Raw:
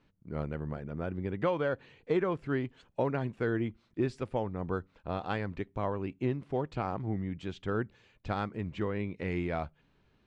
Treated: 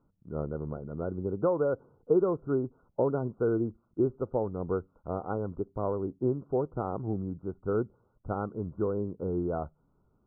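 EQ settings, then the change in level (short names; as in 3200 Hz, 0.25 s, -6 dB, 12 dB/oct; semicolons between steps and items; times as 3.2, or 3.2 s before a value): dynamic EQ 430 Hz, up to +7 dB, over -45 dBFS, Q 1.5; brick-wall FIR low-pass 1500 Hz; air absorption 440 m; 0.0 dB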